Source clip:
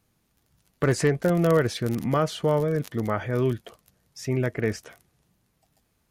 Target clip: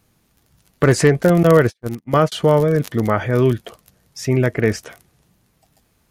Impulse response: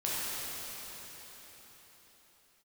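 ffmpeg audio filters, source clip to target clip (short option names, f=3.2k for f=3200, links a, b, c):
-filter_complex "[0:a]asettb=1/sr,asplit=3[a][b][c];[a]atrim=end=1.434[d];[b]atrim=start=1.43:end=2.32,asetpts=PTS-STARTPTS,afade=t=in:d=0.004:c=qsin,afade=t=out:st=0.886:d=0.004:c=qsin,agate=range=-48dB:threshold=-23dB:ratio=16:detection=peak[e];[c]atrim=start=2.316[f];[d][e]acrossfade=d=0.004:c1=hsin:c2=qsin[g];[g][f]acrossfade=d=0.004:c1=qsin:c2=hsin,volume=8.5dB"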